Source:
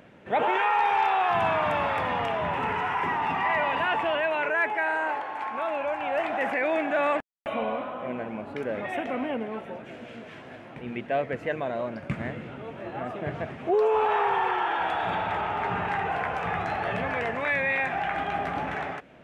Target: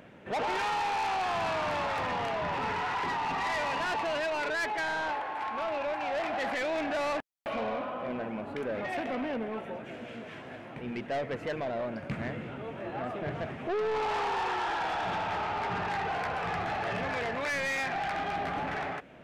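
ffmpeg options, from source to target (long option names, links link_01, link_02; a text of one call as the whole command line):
ffmpeg -i in.wav -af "asoftclip=type=tanh:threshold=-28dB" out.wav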